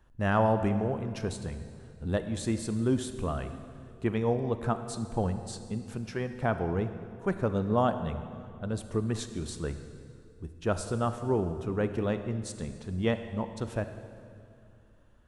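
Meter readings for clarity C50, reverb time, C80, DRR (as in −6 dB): 10.0 dB, 2.4 s, 10.5 dB, 9.0 dB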